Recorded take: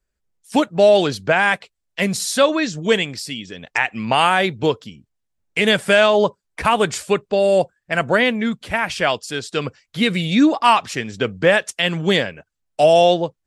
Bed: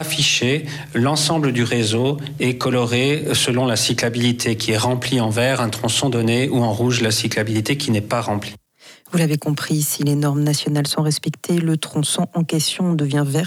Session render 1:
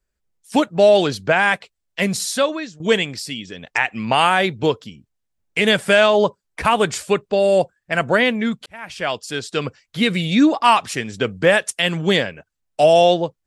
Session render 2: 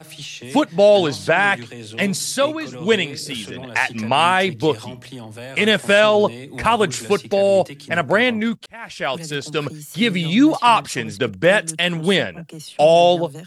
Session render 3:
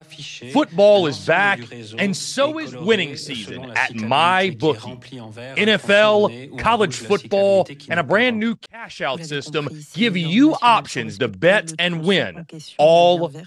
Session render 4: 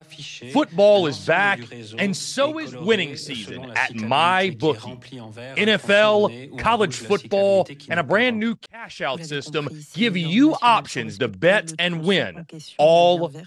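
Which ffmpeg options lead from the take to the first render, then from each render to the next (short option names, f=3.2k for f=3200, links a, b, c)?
-filter_complex "[0:a]asettb=1/sr,asplit=3[a][b][c];[a]atrim=end=10.724[d];[b]atrim=start=10.72:end=11.97,asetpts=PTS-STARTPTS,afade=t=in:d=0.004:c=qsin,afade=t=out:st=1.246:d=0.004:c=qsin,equalizer=f=9.9k:w=1.9:g=8[e];[c]atrim=start=11.966[f];[d][e]acrossfade=d=0.004:c1=hsin:c2=qsin[g];[g][f]acrossfade=d=0.004:c1=qsin:c2=hsin,asplit=3[h][i][j];[h]atrim=end=2.8,asetpts=PTS-STARTPTS,afade=t=out:st=2.21:d=0.59:silence=0.112202[k];[i]atrim=start=2.8:end=8.66,asetpts=PTS-STARTPTS,afade=t=in:d=0.004:c=hsin:silence=0.112202,afade=t=out:st=5.856:d=0.004:c=hsin[l];[j]atrim=start=8.66,asetpts=PTS-STARTPTS,afade=t=in:d=0.68[m];[k][l][m]concat=n=3:v=0:a=1"
-filter_complex "[1:a]volume=-17dB[a];[0:a][a]amix=inputs=2:normalize=0"
-af "agate=range=-33dB:threshold=-37dB:ratio=3:detection=peak,lowpass=6.9k"
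-af "volume=-2dB"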